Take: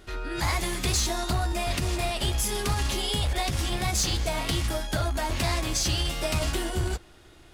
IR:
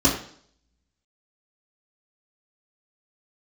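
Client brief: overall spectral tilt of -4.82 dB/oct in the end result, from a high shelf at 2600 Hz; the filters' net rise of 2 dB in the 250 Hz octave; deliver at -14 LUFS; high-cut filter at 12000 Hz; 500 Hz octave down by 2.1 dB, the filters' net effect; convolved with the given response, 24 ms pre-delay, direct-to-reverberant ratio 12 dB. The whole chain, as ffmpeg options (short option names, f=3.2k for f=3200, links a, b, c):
-filter_complex "[0:a]lowpass=12k,equalizer=f=250:t=o:g=5,equalizer=f=500:t=o:g=-5,highshelf=f=2.6k:g=-5,asplit=2[a][b];[1:a]atrim=start_sample=2205,adelay=24[c];[b][c]afir=irnorm=-1:irlink=0,volume=-28.5dB[d];[a][d]amix=inputs=2:normalize=0,volume=13dB"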